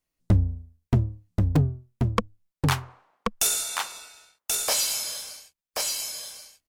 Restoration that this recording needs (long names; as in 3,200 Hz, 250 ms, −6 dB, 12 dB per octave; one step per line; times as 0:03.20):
clipped peaks rebuilt −10 dBFS
repair the gap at 0:01.56/0:03.89, 1.8 ms
echo removal 1,082 ms −3.5 dB